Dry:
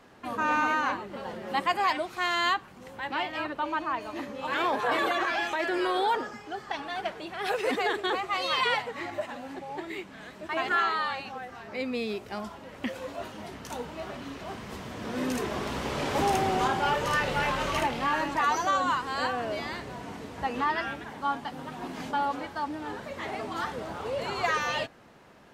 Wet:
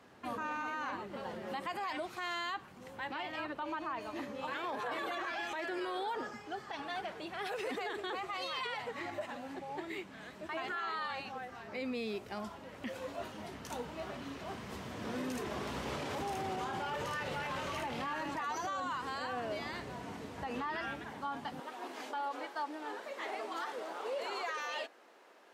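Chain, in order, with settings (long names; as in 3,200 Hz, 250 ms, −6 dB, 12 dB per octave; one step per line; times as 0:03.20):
high-pass filter 54 Hz 24 dB per octave, from 0:21.60 330 Hz
brickwall limiter −25.5 dBFS, peak gain reduction 10.5 dB
level −4.5 dB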